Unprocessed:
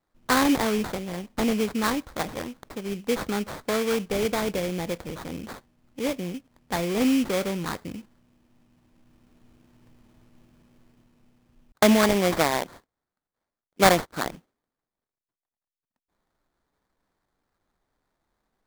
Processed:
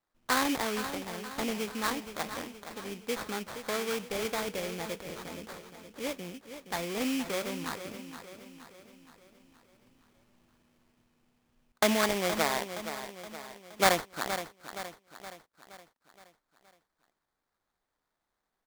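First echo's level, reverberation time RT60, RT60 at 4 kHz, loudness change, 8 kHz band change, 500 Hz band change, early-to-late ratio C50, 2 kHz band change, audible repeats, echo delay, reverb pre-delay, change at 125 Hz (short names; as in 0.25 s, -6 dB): -10.5 dB, none, none, -7.5 dB, -3.5 dB, -7.5 dB, none, -4.0 dB, 5, 0.47 s, none, -11.0 dB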